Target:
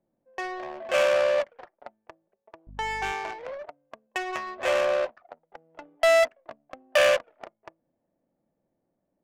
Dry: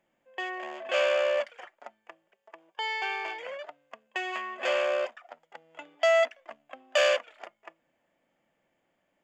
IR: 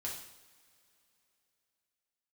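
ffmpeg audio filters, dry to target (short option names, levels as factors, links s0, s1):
-filter_complex "[0:a]adynamicsmooth=sensitivity=3.5:basefreq=550,asettb=1/sr,asplit=3[s0][s1][s2];[s0]atrim=end=2.674[s3];[s1]atrim=start=2.67:end=3.12,asetpts=PTS-STARTPTS,afade=t=in:d=0.004:c=qsin,afade=t=out:st=0.446:d=0.004:c=qsin,aeval=exprs='val(0)+0.00447*(sin(2*PI*50*n/s)+sin(2*PI*2*50*n/s)/2+sin(2*PI*3*50*n/s)/3+sin(2*PI*4*50*n/s)/4+sin(2*PI*5*50*n/s)/5)':c=same[s4];[s2]atrim=start=3.116[s5];[s3][s4]acrossfade=d=0.004:c1=hsin:c2=qsin[s6];[s6][s5]acrossfade=d=0.004:c1=qsin:c2=hsin,volume=1.5"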